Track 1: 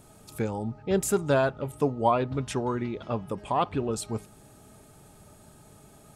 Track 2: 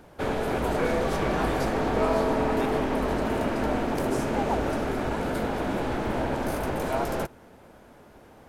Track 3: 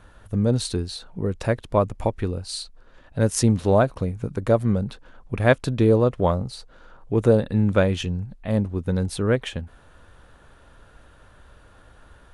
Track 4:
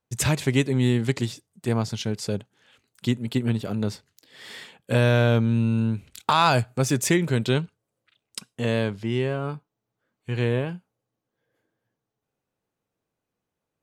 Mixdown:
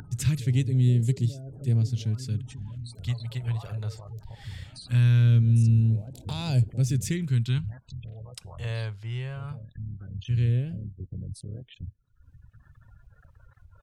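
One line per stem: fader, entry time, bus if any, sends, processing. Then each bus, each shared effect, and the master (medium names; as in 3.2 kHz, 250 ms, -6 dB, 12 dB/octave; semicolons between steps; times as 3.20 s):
-5.0 dB, 0.00 s, bus A, no send, comb 7.1 ms, depth 80%; compression 2:1, threshold -39 dBFS, peak gain reduction 13.5 dB
-1.5 dB, 0.00 s, bus A, no send, compression 16:1, threshold -33 dBFS, peak gain reduction 14.5 dB; reverb removal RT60 0.71 s; auto duck -10 dB, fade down 0.30 s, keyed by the fourth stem
-13.0 dB, 2.25 s, bus A, no send, cycle switcher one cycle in 3, muted; reverb removal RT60 0.91 s; waveshaping leveller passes 1
-9.5 dB, 0.00 s, no bus, no send, none
bus A: 0.0 dB, spectral gate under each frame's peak -15 dB strong; peak limiter -36.5 dBFS, peak gain reduction 19 dB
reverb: none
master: phase shifter stages 2, 0.2 Hz, lowest notch 240–1200 Hz; peaking EQ 110 Hz +13.5 dB 1.2 oct; upward compressor, threshold -39 dBFS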